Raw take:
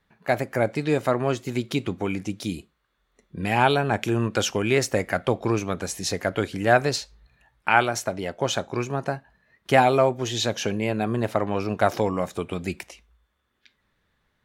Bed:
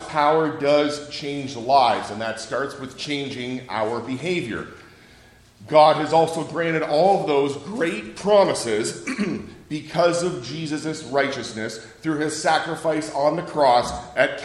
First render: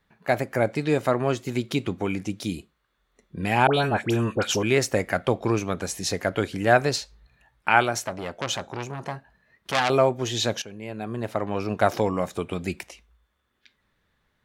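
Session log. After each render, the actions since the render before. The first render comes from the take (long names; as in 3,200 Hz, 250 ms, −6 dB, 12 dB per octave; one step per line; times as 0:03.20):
0:03.67–0:04.63: all-pass dispersion highs, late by 73 ms, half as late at 1,400 Hz
0:08.00–0:09.90: saturating transformer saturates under 3,800 Hz
0:10.62–0:11.82: fade in, from −18 dB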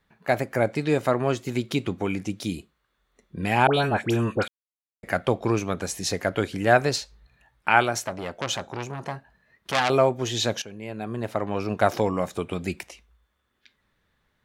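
0:04.48–0:05.03: silence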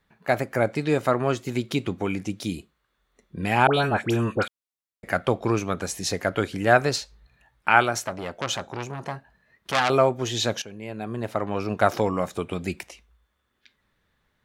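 dynamic equaliser 1,300 Hz, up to +4 dB, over −40 dBFS, Q 3.8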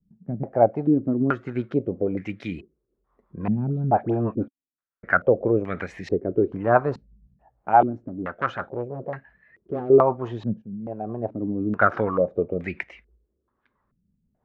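rotating-speaker cabinet horn 6 Hz
low-pass on a step sequencer 2.3 Hz 200–2,000 Hz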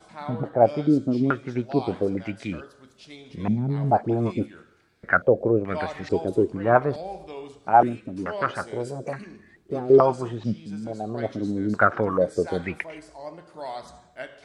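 mix in bed −18.5 dB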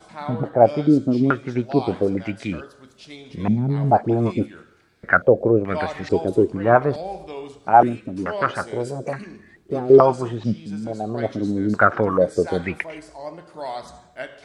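level +4 dB
brickwall limiter −1 dBFS, peak gain reduction 2.5 dB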